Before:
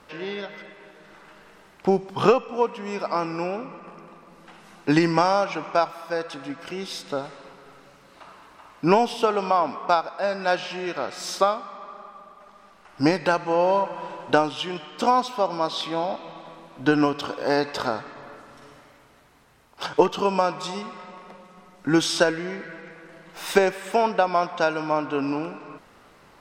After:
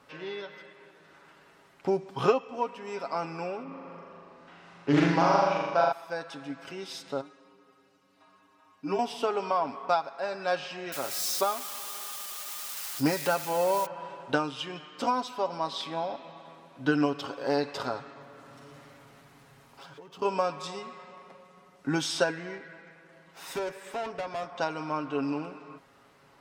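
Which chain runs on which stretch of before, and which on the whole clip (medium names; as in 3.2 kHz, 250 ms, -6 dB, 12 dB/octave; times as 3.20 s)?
3.63–5.92 s: distance through air 88 m + flutter echo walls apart 7 m, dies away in 1.2 s + loudspeaker Doppler distortion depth 0.32 ms
7.21–8.99 s: inharmonic resonator 94 Hz, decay 0.24 s, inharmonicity 0.008 + small resonant body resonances 260/3600 Hz, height 6 dB
10.92–13.86 s: zero-crossing glitches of -19.5 dBFS + high-pass 54 Hz
18.21–20.22 s: peaking EQ 170 Hz +5.5 dB 0.91 oct + compression 5:1, threshold -44 dBFS + power-law waveshaper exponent 0.7
22.58–24.58 s: dynamic bell 3 kHz, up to -4 dB, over -38 dBFS, Q 1.1 + valve stage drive 23 dB, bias 0.55
whole clip: high-pass 51 Hz; comb 7.3 ms, depth 53%; trim -7.5 dB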